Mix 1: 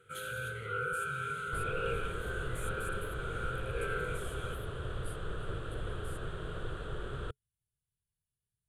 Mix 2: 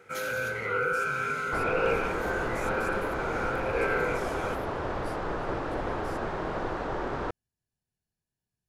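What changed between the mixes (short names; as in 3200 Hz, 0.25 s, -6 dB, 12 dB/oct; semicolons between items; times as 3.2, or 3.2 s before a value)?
first sound: add high shelf 9700 Hz +9.5 dB; master: remove EQ curve 130 Hz 0 dB, 270 Hz -17 dB, 430 Hz -7 dB, 870 Hz -24 dB, 1400 Hz -5 dB, 2100 Hz -17 dB, 3300 Hz +2 dB, 5400 Hz -20 dB, 8900 Hz +7 dB, 13000 Hz -2 dB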